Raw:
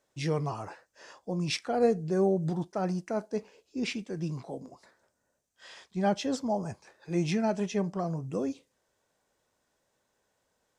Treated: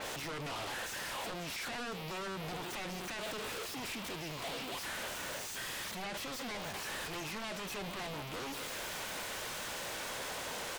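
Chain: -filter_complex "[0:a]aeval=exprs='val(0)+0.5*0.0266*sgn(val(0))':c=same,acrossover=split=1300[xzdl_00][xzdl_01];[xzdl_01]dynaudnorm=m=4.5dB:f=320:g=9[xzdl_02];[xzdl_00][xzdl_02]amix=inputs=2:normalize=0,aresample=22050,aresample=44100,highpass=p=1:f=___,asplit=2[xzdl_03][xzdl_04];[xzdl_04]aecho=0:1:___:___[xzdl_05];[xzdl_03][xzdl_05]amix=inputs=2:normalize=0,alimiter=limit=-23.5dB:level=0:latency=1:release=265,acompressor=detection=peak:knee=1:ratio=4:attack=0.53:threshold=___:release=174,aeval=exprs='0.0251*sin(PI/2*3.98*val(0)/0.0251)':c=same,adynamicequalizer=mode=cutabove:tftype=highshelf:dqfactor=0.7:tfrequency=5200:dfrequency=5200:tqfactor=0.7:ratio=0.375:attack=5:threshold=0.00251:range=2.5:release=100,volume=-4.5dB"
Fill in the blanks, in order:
820, 706, 0.0794, -39dB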